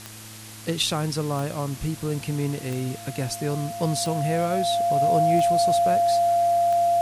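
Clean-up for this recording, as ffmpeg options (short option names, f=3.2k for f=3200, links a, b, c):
-af "adeclick=t=4,bandreject=f=108.9:t=h:w=4,bandreject=f=217.8:t=h:w=4,bandreject=f=326.7:t=h:w=4,bandreject=f=690:w=30,afwtdn=0.0089"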